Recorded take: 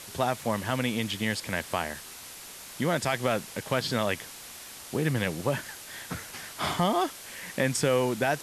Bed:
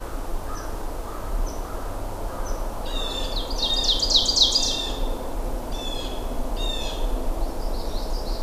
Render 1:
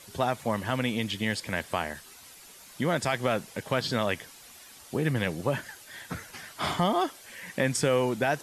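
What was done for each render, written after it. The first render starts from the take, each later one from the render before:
broadband denoise 9 dB, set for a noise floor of −45 dBFS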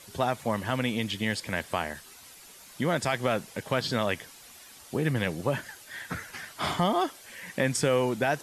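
0:05.91–0:06.45: parametric band 1,700 Hz +5.5 dB 0.89 octaves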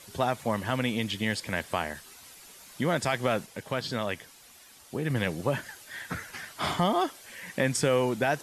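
0:03.46–0:05.10: clip gain −3.5 dB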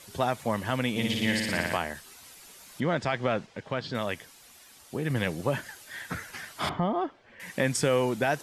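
0:00.90–0:01.77: flutter between parallel walls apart 10 metres, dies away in 1.3 s
0:02.80–0:03.95: high-frequency loss of the air 130 metres
0:06.69–0:07.40: head-to-tape spacing loss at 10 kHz 41 dB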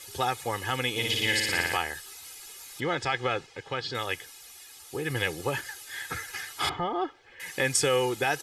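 tilt shelving filter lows −4 dB, about 1,400 Hz
comb filter 2.4 ms, depth 75%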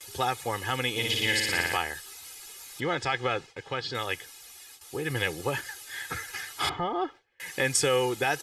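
noise gate with hold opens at −38 dBFS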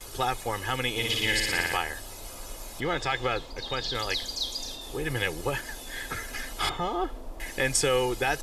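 mix in bed −14 dB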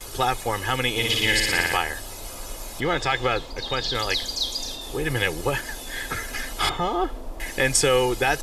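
level +5 dB

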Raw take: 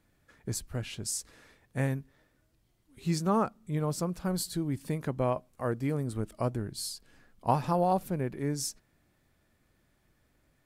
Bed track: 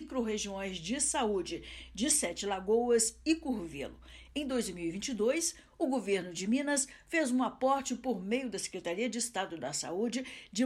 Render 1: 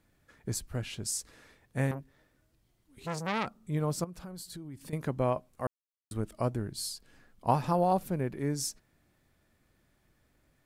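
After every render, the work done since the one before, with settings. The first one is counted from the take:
0:01.91–0:03.47: saturating transformer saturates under 1,900 Hz
0:04.04–0:04.93: downward compressor 4 to 1, threshold −42 dBFS
0:05.67–0:06.11: silence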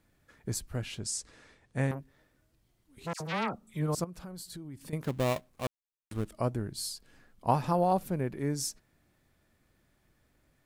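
0:00.99–0:01.91: low-pass filter 9,400 Hz 24 dB per octave
0:03.13–0:03.95: all-pass dispersion lows, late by 73 ms, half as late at 1,600 Hz
0:05.03–0:06.28: gap after every zero crossing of 0.22 ms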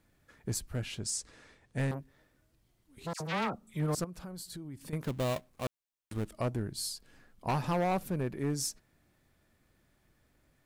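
hard clipping −26 dBFS, distortion −10 dB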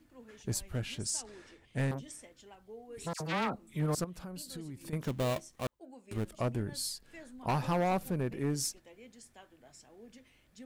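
mix in bed track −20.5 dB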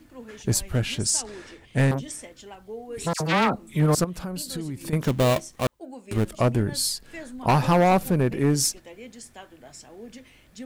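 level +11.5 dB

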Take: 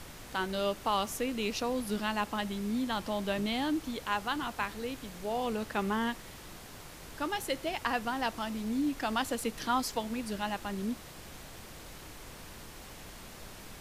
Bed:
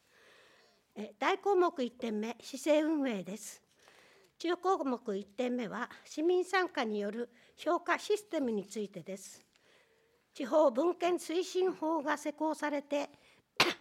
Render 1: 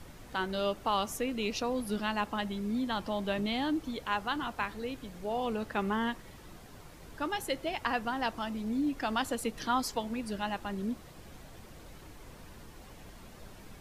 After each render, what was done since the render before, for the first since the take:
broadband denoise 8 dB, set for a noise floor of −48 dBFS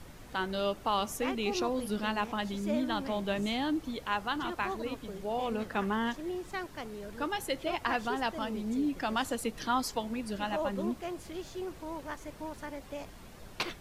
mix in bed −7.5 dB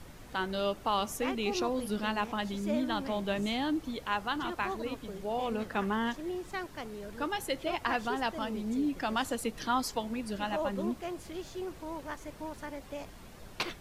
no processing that can be heard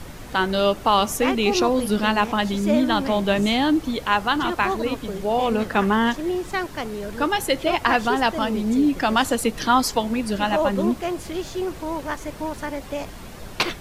level +12 dB

